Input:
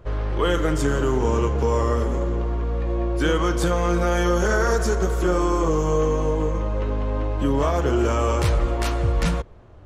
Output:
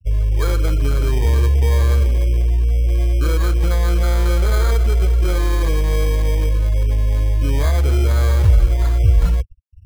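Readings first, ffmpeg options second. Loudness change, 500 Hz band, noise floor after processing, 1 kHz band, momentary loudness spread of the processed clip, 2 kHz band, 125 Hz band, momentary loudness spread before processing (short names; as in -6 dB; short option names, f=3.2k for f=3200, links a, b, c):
+5.0 dB, -4.5 dB, -23 dBFS, -5.5 dB, 3 LU, -1.5 dB, +8.5 dB, 5 LU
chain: -af "afftfilt=real='re*gte(hypot(re,im),0.0631)':imag='im*gte(hypot(re,im),0.0631)':win_size=1024:overlap=0.75,acrusher=samples=16:mix=1:aa=0.000001,lowshelf=f=130:t=q:w=1.5:g=11,volume=-3.5dB"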